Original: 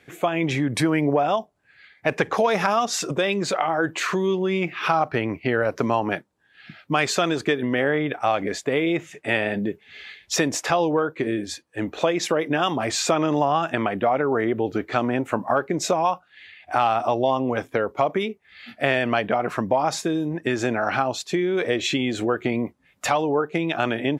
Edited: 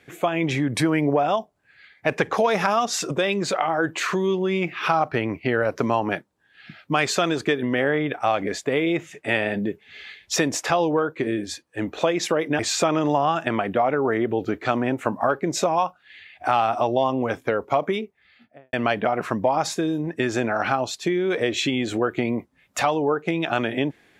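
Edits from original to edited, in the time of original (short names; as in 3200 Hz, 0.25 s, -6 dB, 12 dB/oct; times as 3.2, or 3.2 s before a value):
12.59–12.86 cut
18.12–19 studio fade out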